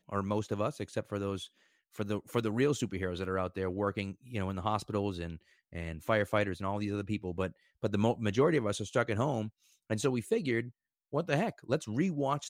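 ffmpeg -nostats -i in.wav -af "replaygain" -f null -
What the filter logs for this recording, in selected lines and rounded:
track_gain = +12.8 dB
track_peak = 0.134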